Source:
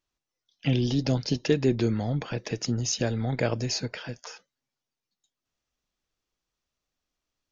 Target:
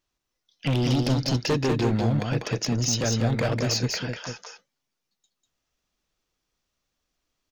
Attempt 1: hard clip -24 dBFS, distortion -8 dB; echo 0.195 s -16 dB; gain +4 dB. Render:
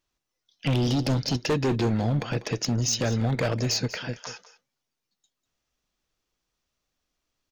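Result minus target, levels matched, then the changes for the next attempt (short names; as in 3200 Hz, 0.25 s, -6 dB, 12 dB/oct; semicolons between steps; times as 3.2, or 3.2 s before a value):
echo-to-direct -11.5 dB
change: echo 0.195 s -4.5 dB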